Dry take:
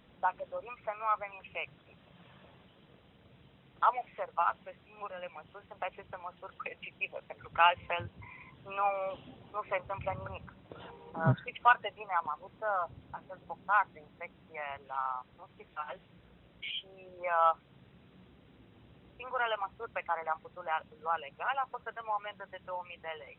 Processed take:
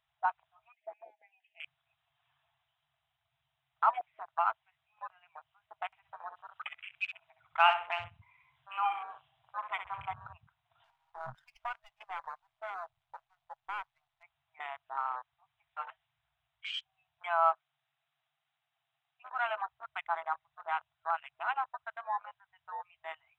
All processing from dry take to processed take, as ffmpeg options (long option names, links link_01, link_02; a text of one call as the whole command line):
ffmpeg -i in.wav -filter_complex "[0:a]asettb=1/sr,asplit=3[link_01][link_02][link_03];[link_01]atrim=end=0.724[link_04];[link_02]atrim=start=0.72:end=1.64,asetpts=PTS-STARTPTS,afade=type=in:duration=0.004:curve=qsin,afade=type=out:start_time=0.916:duration=0.004:curve=qsin,highpass=frequency=310:width=0.5412,highpass=frequency=310:width=1.3066,equalizer=frequency=310:width_type=q:width=4:gain=10,equalizer=frequency=480:width_type=q:width=4:gain=5,equalizer=frequency=730:width_type=q:width=4:gain=-7,equalizer=frequency=1300:width_type=q:width=4:gain=5,equalizer=frequency=2300:width_type=q:width=4:gain=-6,lowpass=frequency=3100:width=0.5412,lowpass=frequency=3100:width=1.3066,acompressor=threshold=-33dB:ratio=2:attack=3.2:release=140:knee=1:detection=peak,asuperstop=centerf=1200:order=8:qfactor=1.2[link_05];[link_03]atrim=start=1.636[link_06];[link_04][link_05]acrossfade=duration=0.004:curve1=hsin:curve2=qsin[link_07];[link_07][link_06]acrossfade=duration=0.004:curve1=qsin:curve2=hsin,asettb=1/sr,asplit=3[link_08][link_09][link_10];[link_08]atrim=end=5.864[link_11];[link_09]atrim=start=5.86:end=10.12,asetpts=PTS-STARTPTS,afade=type=in:duration=0.004:curve=qsin,afade=type=out:start_time=4.256:duration=0.004:curve=qsin,acompressor=mode=upward:threshold=-43dB:ratio=2.5:attack=3.2:release=140:knee=2.83:detection=peak,aecho=1:1:65|130|195|260:0.376|0.132|0.046|0.0161,atrim=end_sample=187866[link_12];[link_10]atrim=start=10.116[link_13];[link_11][link_12]acrossfade=duration=0.004:curve1=hsin:curve2=qsin[link_14];[link_14][link_13]acrossfade=duration=0.004:curve1=qsin:curve2=hsin,asettb=1/sr,asplit=3[link_15][link_16][link_17];[link_15]atrim=end=10.844[link_18];[link_16]atrim=start=10.84:end=14.23,asetpts=PTS-STARTPTS,afade=type=in:duration=0.004:curve=qsin,afade=type=out:start_time=3.386:duration=0.004:curve=qsin,aeval=exprs='if(lt(val(0),0),0.251*val(0),val(0))':channel_layout=same,bass=frequency=250:gain=-3,treble=frequency=4000:gain=2,acompressor=threshold=-33dB:ratio=4:attack=3.2:release=140:knee=1:detection=peak[link_19];[link_17]atrim=start=14.226[link_20];[link_18][link_19]acrossfade=duration=0.004:curve1=hsin:curve2=qsin[link_21];[link_21][link_20]acrossfade=duration=0.004:curve1=qsin:curve2=hsin,asettb=1/sr,asplit=3[link_22][link_23][link_24];[link_22]atrim=end=17.524[link_25];[link_23]atrim=start=17.52:end=19.41,asetpts=PTS-STARTPTS,afade=type=in:duration=0.004:curve=qsin,afade=type=out:start_time=1.886:duration=0.004:curve=qsin,highpass=frequency=170:width=0.5412,highpass=frequency=170:width=1.3066,equalizer=frequency=980:width=6.1:gain=-4.5[link_26];[link_24]atrim=start=19.406[link_27];[link_25][link_26]acrossfade=duration=0.004:curve1=hsin:curve2=qsin[link_28];[link_28][link_27]acrossfade=duration=0.004:curve1=qsin:curve2=hsin,afftfilt=real='re*(1-between(b*sr/4096,160,640))':imag='im*(1-between(b*sr/4096,160,640))':win_size=4096:overlap=0.75,bass=frequency=250:gain=-10,treble=frequency=4000:gain=3,afwtdn=0.00794" out.wav